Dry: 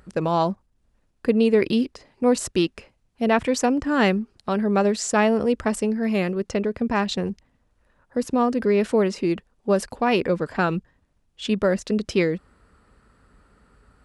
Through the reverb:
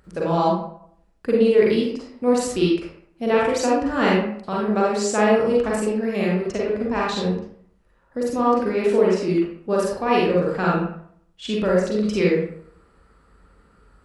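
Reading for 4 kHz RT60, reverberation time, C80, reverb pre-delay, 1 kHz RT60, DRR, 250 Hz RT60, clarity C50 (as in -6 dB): 0.40 s, 0.65 s, 4.5 dB, 37 ms, 0.65 s, -4.5 dB, 0.65 s, 0.0 dB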